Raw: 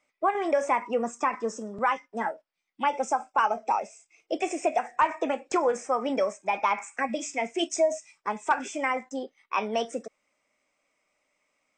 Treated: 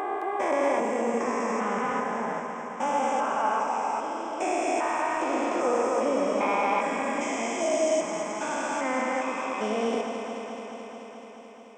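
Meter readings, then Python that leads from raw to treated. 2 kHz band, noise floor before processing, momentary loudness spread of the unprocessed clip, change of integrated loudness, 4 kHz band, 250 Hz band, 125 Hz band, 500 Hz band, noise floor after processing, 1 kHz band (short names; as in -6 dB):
+0.5 dB, -81 dBFS, 8 LU, +1.0 dB, -1.0 dB, +3.5 dB, n/a, +2.0 dB, -43 dBFS, +0.5 dB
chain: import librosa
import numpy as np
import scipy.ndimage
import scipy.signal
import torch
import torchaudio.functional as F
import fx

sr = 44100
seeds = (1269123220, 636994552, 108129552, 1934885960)

y = fx.spec_steps(x, sr, hold_ms=400)
y = fx.echo_alternate(y, sr, ms=108, hz=1100.0, feedback_pct=88, wet_db=-5.5)
y = y * librosa.db_to_amplitude(5.5)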